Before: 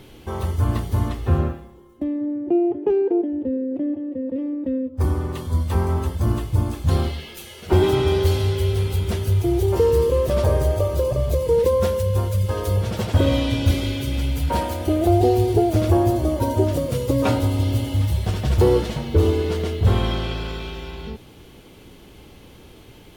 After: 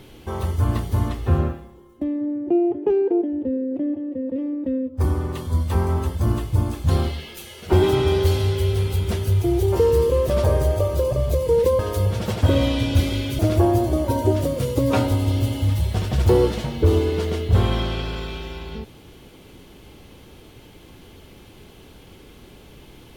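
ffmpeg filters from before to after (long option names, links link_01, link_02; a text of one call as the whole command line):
ffmpeg -i in.wav -filter_complex "[0:a]asplit=3[link_01][link_02][link_03];[link_01]atrim=end=11.792[link_04];[link_02]atrim=start=12.498:end=14.102[link_05];[link_03]atrim=start=15.708[link_06];[link_04][link_05]acrossfade=duration=0.004:curve1=hsin:curve2=hsin[link_07];[link_07][link_06]acrossfade=duration=0.004:curve1=hsin:curve2=hsin" out.wav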